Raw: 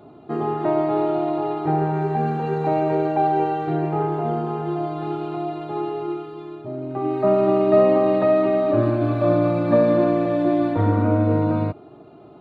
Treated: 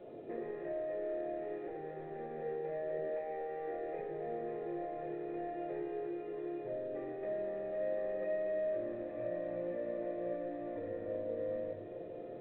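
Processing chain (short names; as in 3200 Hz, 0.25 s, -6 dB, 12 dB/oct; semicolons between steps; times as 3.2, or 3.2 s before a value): 2.98–3.99 Bessel high-pass 350 Hz, order 2; limiter -13.5 dBFS, peak gain reduction 8.5 dB; compressor 16:1, threshold -32 dBFS, peak gain reduction 15.5 dB; soft clip -33 dBFS, distortion -15 dB; vocal tract filter e; diffused feedback echo 0.848 s, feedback 50%, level -10.5 dB; shoebox room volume 39 m³, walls mixed, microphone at 0.86 m; gain +4 dB; A-law 64 kbps 8000 Hz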